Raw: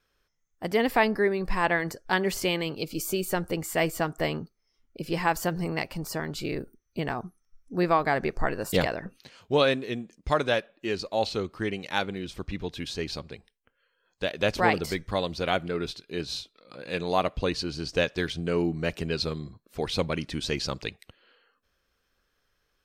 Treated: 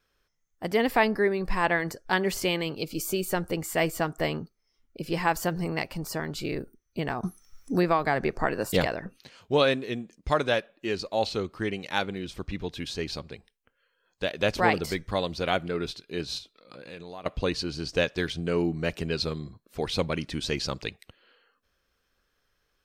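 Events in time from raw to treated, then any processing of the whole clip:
0:07.23–0:08.65: multiband upward and downward compressor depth 70%
0:16.38–0:17.26: downward compressor 4 to 1, threshold −40 dBFS

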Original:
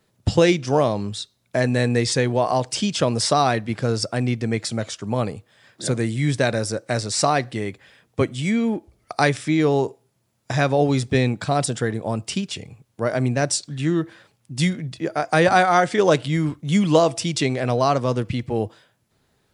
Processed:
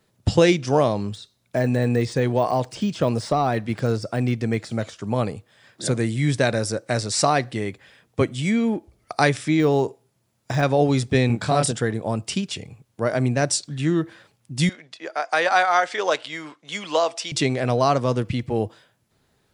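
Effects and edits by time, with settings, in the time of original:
0:01.00–0:04.99: de-essing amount 95%
0:09.60–0:10.63: de-essing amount 85%
0:11.27–0:11.72: double-tracking delay 26 ms −3 dB
0:14.69–0:17.32: band-pass filter 670–6,500 Hz

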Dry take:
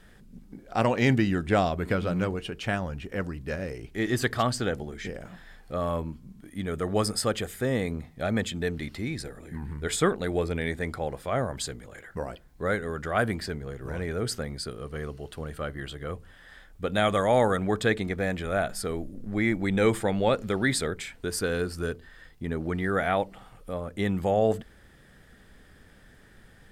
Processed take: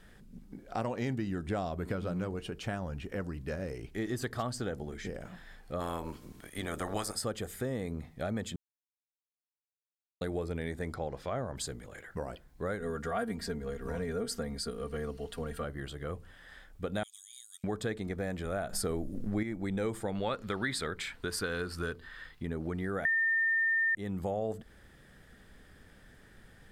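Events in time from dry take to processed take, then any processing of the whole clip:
0:05.79–0:07.15: ceiling on every frequency bin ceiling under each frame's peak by 20 dB
0:08.56–0:10.21: silence
0:10.94–0:11.56: high shelf with overshoot 7,300 Hz −8 dB, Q 1.5
0:12.80–0:15.64: comb filter 4.3 ms, depth 90%
0:17.03–0:17.64: inverse Chebyshev high-pass filter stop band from 770 Hz, stop band 80 dB
0:18.73–0:19.43: clip gain +8.5 dB
0:20.15–0:22.43: flat-topped bell 2,100 Hz +8.5 dB 2.5 octaves
0:23.05–0:23.95: beep over 1,810 Hz −6 dBFS
whole clip: dynamic equaliser 2,500 Hz, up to −6 dB, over −45 dBFS, Q 1; downward compressor 3 to 1, threshold −30 dBFS; level −2.5 dB

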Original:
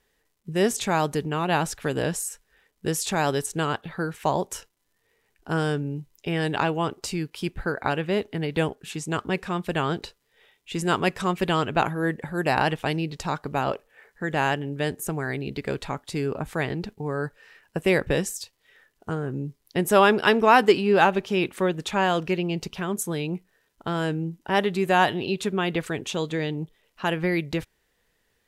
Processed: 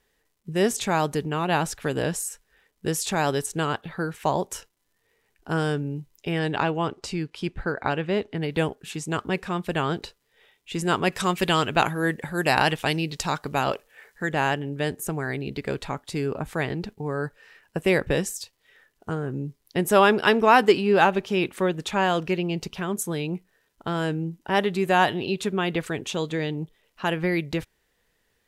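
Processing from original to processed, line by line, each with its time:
0:06.39–0:08.42: high-frequency loss of the air 53 metres
0:11.12–0:14.29: high-shelf EQ 2,200 Hz +8.5 dB

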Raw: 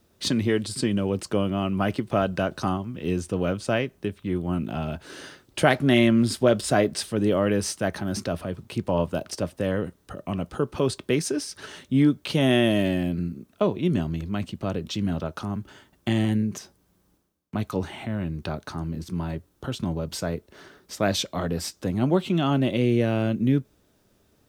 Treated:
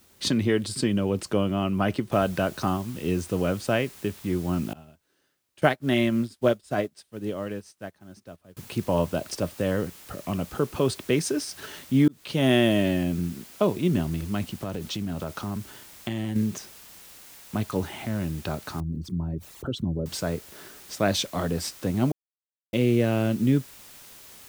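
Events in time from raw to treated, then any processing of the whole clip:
0:02.12: noise floor change −60 dB −48 dB
0:04.73–0:08.57: expander for the loud parts 2.5 to 1, over −35 dBFS
0:12.08–0:12.48: fade in
0:14.53–0:16.36: downward compressor, threshold −26 dBFS
0:18.80–0:20.06: spectral envelope exaggerated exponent 2
0:22.12–0:22.73: silence

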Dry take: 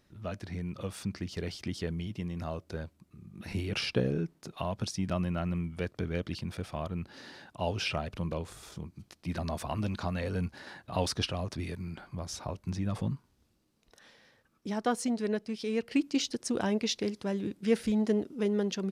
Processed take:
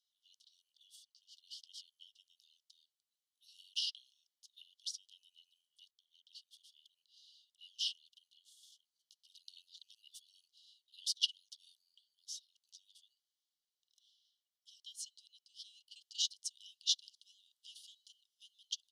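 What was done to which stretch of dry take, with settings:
0:00.96–0:01.44: clip gain −4 dB
0:05.91–0:06.65: fade in, from −12 dB
0:09.49–0:10.28: reverse
whole clip: Chebyshev high-pass filter 2,900 Hz, order 10; high-shelf EQ 6,400 Hz −10.5 dB; expander for the loud parts 1.5 to 1, over −57 dBFS; level +6 dB

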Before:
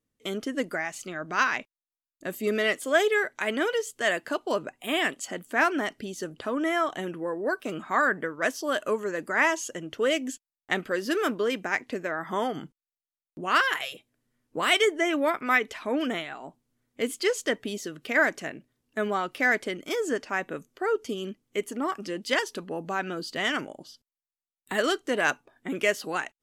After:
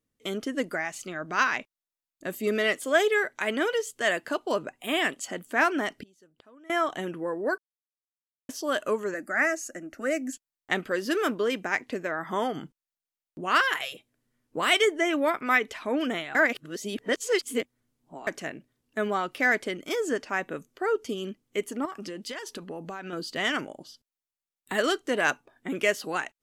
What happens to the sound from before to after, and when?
0:06.03–0:06.70: gate with flip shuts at −34 dBFS, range −25 dB
0:07.58–0:08.49: silence
0:09.14–0:10.33: phaser with its sweep stopped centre 660 Hz, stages 8
0:16.35–0:18.27: reverse
0:21.85–0:23.13: downward compressor 16 to 1, threshold −32 dBFS

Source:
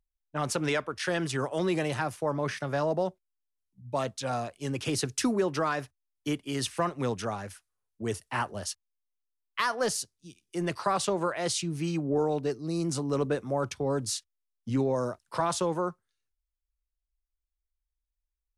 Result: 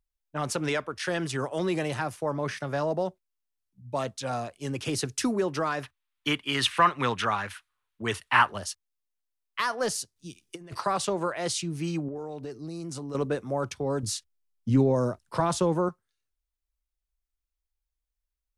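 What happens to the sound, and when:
0:05.83–0:08.58: flat-topped bell 1,900 Hz +12 dB 2.4 octaves
0:10.16–0:10.81: compressor whose output falls as the input rises −37 dBFS, ratio −0.5
0:12.08–0:13.15: downward compressor, threshold −33 dBFS
0:14.03–0:15.89: low-shelf EQ 390 Hz +8.5 dB

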